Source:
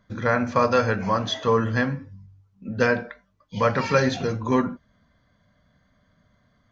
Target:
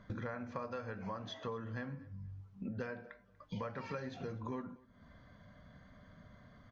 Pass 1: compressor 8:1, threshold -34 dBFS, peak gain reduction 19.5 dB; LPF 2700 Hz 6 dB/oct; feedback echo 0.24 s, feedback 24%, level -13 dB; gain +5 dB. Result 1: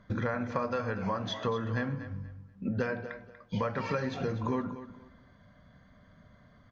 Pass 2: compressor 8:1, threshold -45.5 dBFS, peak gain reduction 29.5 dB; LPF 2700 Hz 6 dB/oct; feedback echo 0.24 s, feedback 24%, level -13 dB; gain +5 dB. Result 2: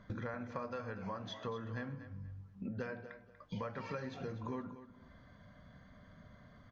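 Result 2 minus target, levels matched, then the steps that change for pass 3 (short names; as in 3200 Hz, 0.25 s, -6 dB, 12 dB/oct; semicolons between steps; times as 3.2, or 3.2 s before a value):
echo-to-direct +10.5 dB
change: feedback echo 0.24 s, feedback 24%, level -23.5 dB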